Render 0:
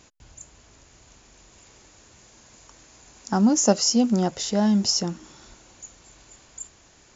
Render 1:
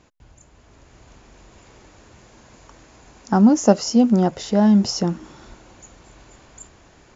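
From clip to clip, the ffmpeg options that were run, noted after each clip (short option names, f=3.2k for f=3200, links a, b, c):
-af "lowpass=f=1.7k:p=1,dynaudnorm=f=510:g=3:m=6.5dB,volume=1dB"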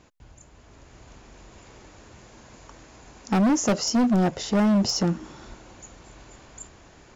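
-af "asoftclip=type=hard:threshold=-17.5dB"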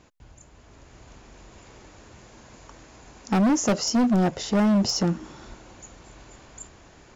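-af anull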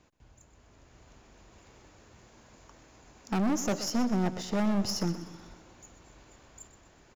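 -filter_complex "[0:a]aeval=exprs='0.141*(cos(1*acos(clip(val(0)/0.141,-1,1)))-cos(1*PI/2))+0.0316*(cos(2*acos(clip(val(0)/0.141,-1,1)))-cos(2*PI/2))':c=same,acrossover=split=530|2000[a][b][c];[c]acrusher=bits=5:mode=log:mix=0:aa=0.000001[d];[a][b][d]amix=inputs=3:normalize=0,aecho=1:1:125|250|375|500|625:0.224|0.105|0.0495|0.0232|0.0109,volume=-8dB"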